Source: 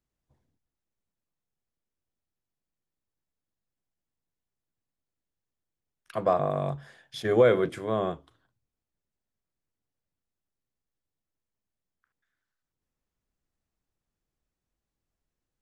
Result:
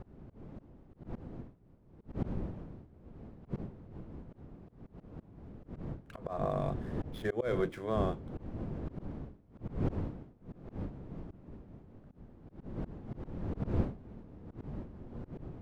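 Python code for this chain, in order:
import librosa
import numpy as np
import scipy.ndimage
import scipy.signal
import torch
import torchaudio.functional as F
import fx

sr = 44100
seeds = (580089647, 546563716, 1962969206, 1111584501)

y = scipy.ndimage.median_filter(x, 9, mode='constant')
y = fx.dmg_wind(y, sr, seeds[0], corner_hz=230.0, level_db=-31.0)
y = fx.auto_swell(y, sr, attack_ms=190.0)
y = F.gain(torch.from_numpy(y), -5.0).numpy()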